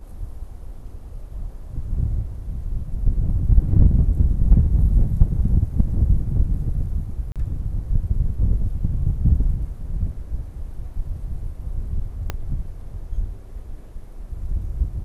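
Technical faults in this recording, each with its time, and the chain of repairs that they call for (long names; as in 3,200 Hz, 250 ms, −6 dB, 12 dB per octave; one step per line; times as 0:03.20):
0:07.32–0:07.36: drop-out 37 ms
0:12.30: click −11 dBFS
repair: click removal
repair the gap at 0:07.32, 37 ms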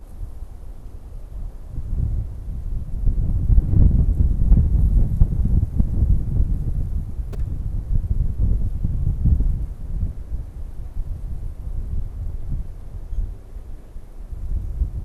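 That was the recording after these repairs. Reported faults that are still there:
0:12.30: click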